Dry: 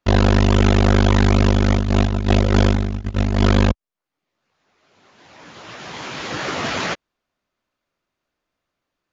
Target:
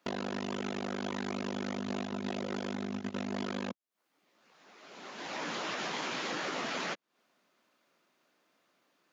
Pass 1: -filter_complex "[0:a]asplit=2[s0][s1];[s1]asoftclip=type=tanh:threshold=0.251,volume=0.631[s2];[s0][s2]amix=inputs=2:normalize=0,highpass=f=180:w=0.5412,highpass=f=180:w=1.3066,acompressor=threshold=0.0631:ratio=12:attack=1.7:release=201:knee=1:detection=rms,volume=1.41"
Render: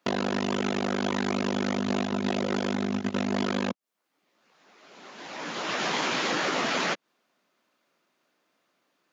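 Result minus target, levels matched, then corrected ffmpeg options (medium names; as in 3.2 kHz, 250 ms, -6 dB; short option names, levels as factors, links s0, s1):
compression: peak gain reduction -8.5 dB
-filter_complex "[0:a]asplit=2[s0][s1];[s1]asoftclip=type=tanh:threshold=0.251,volume=0.631[s2];[s0][s2]amix=inputs=2:normalize=0,highpass=f=180:w=0.5412,highpass=f=180:w=1.3066,acompressor=threshold=0.0211:ratio=12:attack=1.7:release=201:knee=1:detection=rms,volume=1.41"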